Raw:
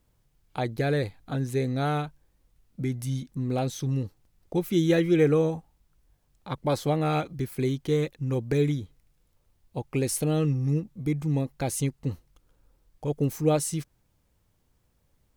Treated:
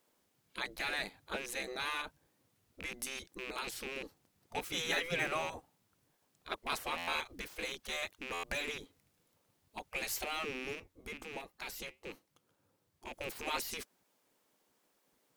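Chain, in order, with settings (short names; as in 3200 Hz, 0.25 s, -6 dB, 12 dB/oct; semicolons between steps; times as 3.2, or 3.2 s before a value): rattling part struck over -29 dBFS, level -32 dBFS; spectral gate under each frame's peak -15 dB weak; 10.75–13.13 flange 1.3 Hz, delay 4.4 ms, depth 2.5 ms, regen -84%; stuck buffer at 6.97/8.33, samples 512, times 8; gain +1 dB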